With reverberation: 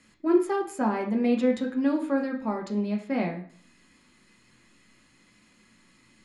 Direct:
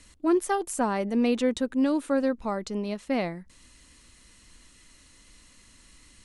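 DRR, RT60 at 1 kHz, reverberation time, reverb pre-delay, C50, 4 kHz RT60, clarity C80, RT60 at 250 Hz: 0.0 dB, 0.50 s, 0.50 s, 3 ms, 9.5 dB, 0.45 s, 13.0 dB, 0.60 s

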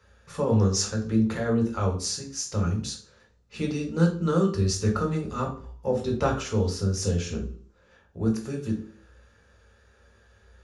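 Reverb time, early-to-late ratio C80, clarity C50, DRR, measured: 0.50 s, 14.5 dB, 9.0 dB, 0.0 dB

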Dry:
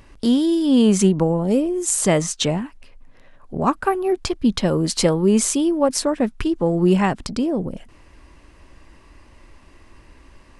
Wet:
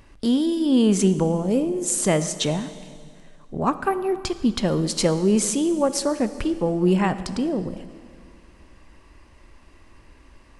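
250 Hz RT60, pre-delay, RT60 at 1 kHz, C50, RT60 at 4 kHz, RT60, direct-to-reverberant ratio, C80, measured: 2.4 s, 18 ms, 2.1 s, 13.0 dB, 2.0 s, 2.2 s, 12.0 dB, 13.5 dB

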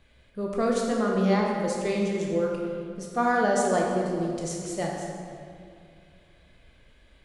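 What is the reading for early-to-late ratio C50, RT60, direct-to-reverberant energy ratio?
0.5 dB, 2.3 s, -2.0 dB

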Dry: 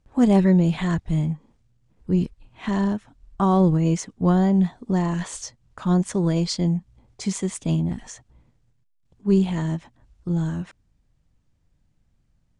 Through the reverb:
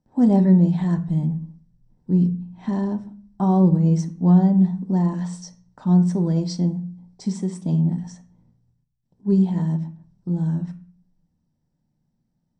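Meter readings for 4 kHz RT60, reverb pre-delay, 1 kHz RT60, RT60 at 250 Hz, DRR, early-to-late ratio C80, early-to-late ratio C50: 0.40 s, 3 ms, 0.40 s, 0.75 s, 6.5 dB, 19.0 dB, 13.5 dB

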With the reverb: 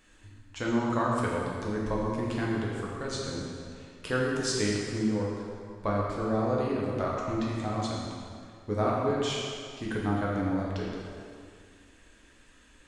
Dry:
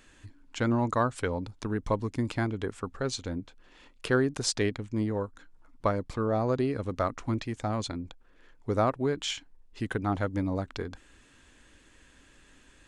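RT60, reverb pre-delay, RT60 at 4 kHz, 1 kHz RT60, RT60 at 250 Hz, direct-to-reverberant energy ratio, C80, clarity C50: 2.2 s, 5 ms, 1.8 s, 2.2 s, 2.2 s, -4.5 dB, 0.0 dB, -1.0 dB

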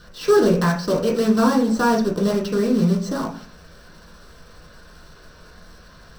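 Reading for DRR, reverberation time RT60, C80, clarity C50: -3.0 dB, 0.45 s, 13.0 dB, 8.5 dB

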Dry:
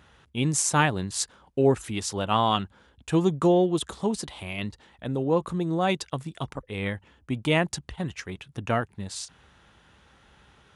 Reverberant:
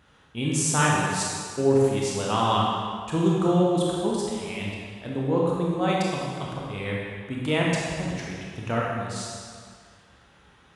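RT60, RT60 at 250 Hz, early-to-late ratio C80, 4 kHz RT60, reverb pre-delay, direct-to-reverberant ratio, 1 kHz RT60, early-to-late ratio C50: 2.0 s, 1.9 s, 0.0 dB, 1.7 s, 23 ms, -4.0 dB, 2.1 s, -2.0 dB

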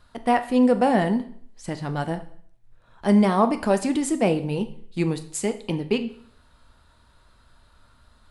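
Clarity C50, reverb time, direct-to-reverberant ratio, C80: 13.5 dB, 0.60 s, 8.5 dB, 17.5 dB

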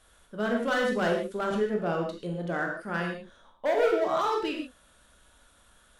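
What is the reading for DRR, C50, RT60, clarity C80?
0.5 dB, 4.0 dB, not exponential, 7.0 dB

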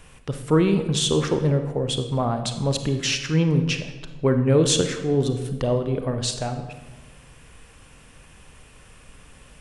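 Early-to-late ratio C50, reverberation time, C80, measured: 8.5 dB, 1.2 s, 10.5 dB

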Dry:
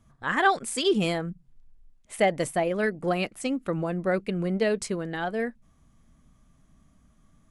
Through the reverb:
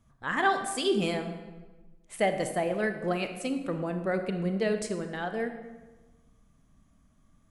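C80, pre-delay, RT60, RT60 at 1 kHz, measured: 10.0 dB, 27 ms, 1.2 s, 1.2 s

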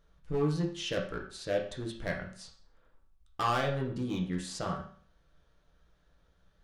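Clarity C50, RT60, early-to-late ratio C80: 7.0 dB, 0.50 s, 11.0 dB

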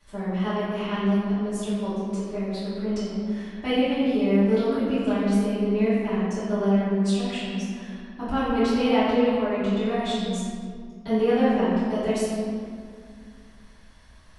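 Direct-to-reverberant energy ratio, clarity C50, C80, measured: -14.5 dB, -3.0 dB, -0.5 dB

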